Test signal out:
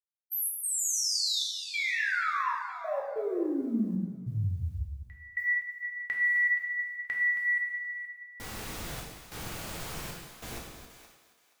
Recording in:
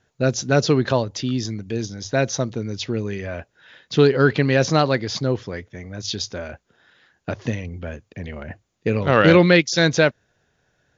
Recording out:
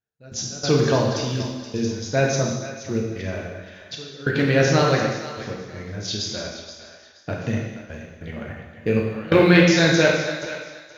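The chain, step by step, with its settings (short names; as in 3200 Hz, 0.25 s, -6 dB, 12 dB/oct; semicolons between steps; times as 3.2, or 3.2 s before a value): reverse delay 0.201 s, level -10.5 dB; step gate "..x.xxxxx..xxxxx" 95 bpm -24 dB; short-mantissa float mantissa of 6-bit; thinning echo 0.475 s, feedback 24%, high-pass 620 Hz, level -12.5 dB; non-linear reverb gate 0.38 s falling, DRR -1.5 dB; gain -3.5 dB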